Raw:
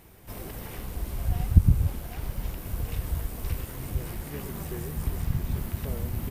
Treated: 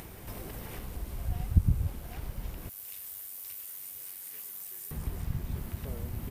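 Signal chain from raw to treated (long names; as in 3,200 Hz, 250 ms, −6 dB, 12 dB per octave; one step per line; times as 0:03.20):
0:02.69–0:04.91: first difference
upward compression, threshold −28 dBFS
level −6 dB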